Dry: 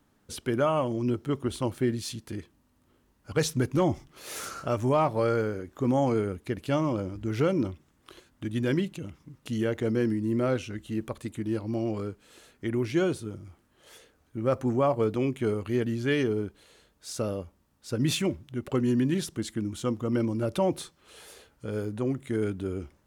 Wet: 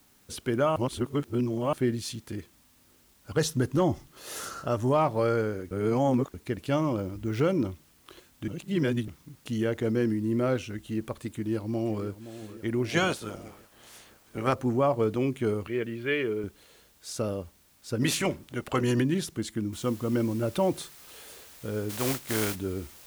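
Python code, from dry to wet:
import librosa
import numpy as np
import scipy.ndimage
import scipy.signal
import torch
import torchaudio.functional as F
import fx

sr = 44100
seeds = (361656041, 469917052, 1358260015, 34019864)

y = fx.notch(x, sr, hz=2300.0, q=5.9, at=(3.36, 4.96))
y = fx.resample_bad(y, sr, factor=2, down='none', up='hold', at=(6.98, 7.41))
y = fx.echo_throw(y, sr, start_s=11.3, length_s=0.75, ms=520, feedback_pct=60, wet_db=-13.5)
y = fx.spec_clip(y, sr, under_db=19, at=(12.88, 14.52), fade=0.02)
y = fx.cabinet(y, sr, low_hz=160.0, low_slope=12, high_hz=3300.0, hz=(160.0, 260.0, 780.0, 2300.0), db=(-9, -9, -9, 5), at=(15.67, 16.44))
y = fx.spec_clip(y, sr, under_db=15, at=(18.01, 19.01), fade=0.02)
y = fx.noise_floor_step(y, sr, seeds[0], at_s=19.73, before_db=-63, after_db=-51, tilt_db=0.0)
y = fx.spec_flatten(y, sr, power=0.54, at=(21.89, 22.54), fade=0.02)
y = fx.edit(y, sr, fx.reverse_span(start_s=0.76, length_s=0.97),
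    fx.reverse_span(start_s=5.71, length_s=0.63),
    fx.reverse_span(start_s=8.48, length_s=0.6), tone=tone)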